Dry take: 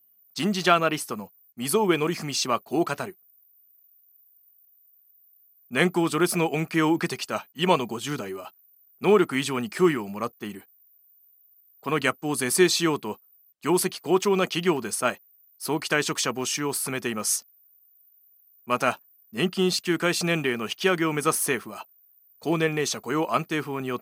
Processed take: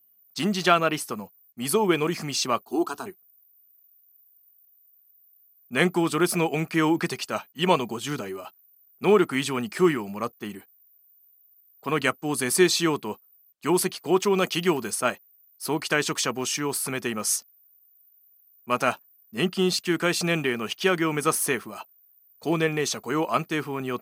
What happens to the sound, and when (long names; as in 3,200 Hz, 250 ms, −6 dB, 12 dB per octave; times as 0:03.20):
0:02.62–0:03.06: phaser with its sweep stopped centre 560 Hz, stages 6
0:14.38–0:14.91: high-shelf EQ 7,000 Hz +6.5 dB